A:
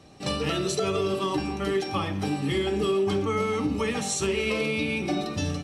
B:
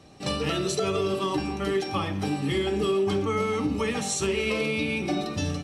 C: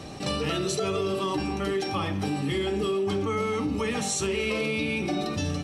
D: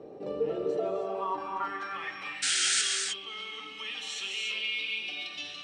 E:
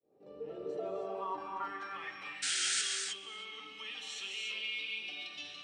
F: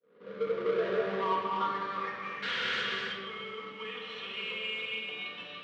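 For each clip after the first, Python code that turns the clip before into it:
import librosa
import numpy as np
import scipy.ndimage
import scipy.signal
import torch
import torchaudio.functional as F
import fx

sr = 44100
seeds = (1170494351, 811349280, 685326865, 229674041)

y1 = x
y2 = fx.env_flatten(y1, sr, amount_pct=50)
y2 = F.gain(torch.from_numpy(y2), -3.0).numpy()
y3 = fx.filter_sweep_bandpass(y2, sr, from_hz=450.0, to_hz=3100.0, start_s=0.48, end_s=2.53, q=4.2)
y3 = fx.spec_paint(y3, sr, seeds[0], shape='noise', start_s=2.42, length_s=0.4, low_hz=1300.0, high_hz=9400.0, level_db=-32.0)
y3 = fx.rev_gated(y3, sr, seeds[1], gate_ms=330, shape='rising', drr_db=2.5)
y3 = F.gain(torch.from_numpy(y3), 4.0).numpy()
y4 = fx.fade_in_head(y3, sr, length_s=1.03)
y4 = y4 + 10.0 ** (-23.0 / 20.0) * np.pad(y4, (int(323 * sr / 1000.0), 0))[:len(y4)]
y4 = F.gain(torch.from_numpy(y4), -6.0).numpy()
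y5 = fx.halfwave_hold(y4, sr)
y5 = fx.cabinet(y5, sr, low_hz=120.0, low_slope=12, high_hz=3200.0, hz=(200.0, 290.0, 490.0, 760.0, 1100.0, 2600.0), db=(7, -9, 9, -8, 5, -5))
y5 = fx.room_shoebox(y5, sr, seeds[2], volume_m3=1300.0, walls='mixed', distance_m=1.8)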